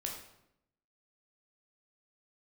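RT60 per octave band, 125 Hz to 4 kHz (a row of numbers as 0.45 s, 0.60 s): 1.0 s, 1.0 s, 0.85 s, 0.75 s, 0.65 s, 0.60 s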